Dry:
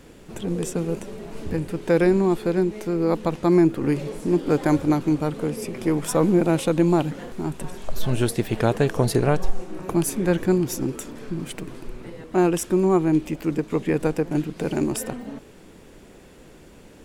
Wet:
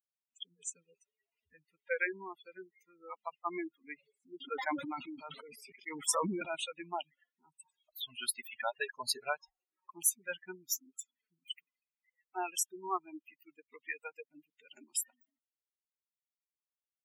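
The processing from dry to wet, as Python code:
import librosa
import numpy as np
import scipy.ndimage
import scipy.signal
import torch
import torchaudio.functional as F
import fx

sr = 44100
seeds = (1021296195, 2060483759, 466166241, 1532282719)

y = fx.bin_expand(x, sr, power=3.0)
y = scipy.signal.sosfilt(scipy.signal.butter(2, 1300.0, 'highpass', fs=sr, output='sos'), y)
y = fx.spec_gate(y, sr, threshold_db=-20, keep='strong')
y = fx.sustainer(y, sr, db_per_s=33.0, at=(4.4, 6.54), fade=0.02)
y = y * librosa.db_to_amplitude(3.5)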